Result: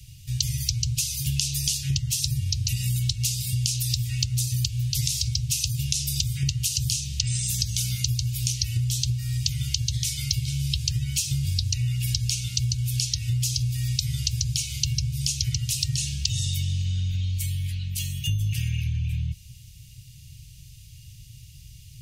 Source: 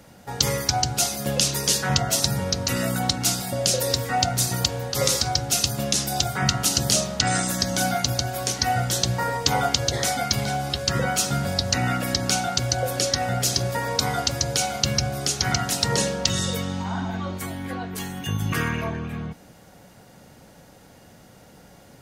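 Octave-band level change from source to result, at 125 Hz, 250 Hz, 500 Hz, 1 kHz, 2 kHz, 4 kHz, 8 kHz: +3.0 dB, -8.5 dB, under -35 dB, under -40 dB, -12.5 dB, -3.5 dB, -3.0 dB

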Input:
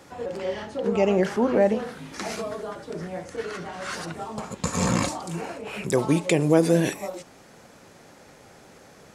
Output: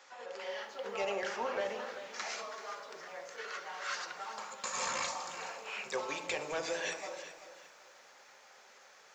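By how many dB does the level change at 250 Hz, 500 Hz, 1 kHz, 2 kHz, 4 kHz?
-27.0 dB, -15.0 dB, -7.5 dB, -5.0 dB, -5.0 dB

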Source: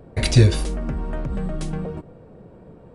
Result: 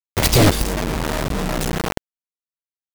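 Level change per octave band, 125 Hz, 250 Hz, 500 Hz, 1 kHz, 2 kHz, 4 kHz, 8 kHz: -2.5 dB, +4.0 dB, +5.5 dB, +13.0 dB, +8.0 dB, +6.5 dB, +9.5 dB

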